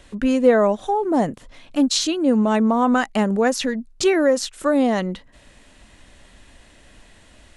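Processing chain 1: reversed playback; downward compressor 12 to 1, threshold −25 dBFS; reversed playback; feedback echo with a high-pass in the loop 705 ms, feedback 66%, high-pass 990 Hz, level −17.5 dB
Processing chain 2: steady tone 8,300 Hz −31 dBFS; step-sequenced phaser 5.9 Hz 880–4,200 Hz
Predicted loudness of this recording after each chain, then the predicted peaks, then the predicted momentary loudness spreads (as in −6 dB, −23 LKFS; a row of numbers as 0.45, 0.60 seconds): −29.5, −23.0 LKFS; −13.0, −7.0 dBFS; 21, 15 LU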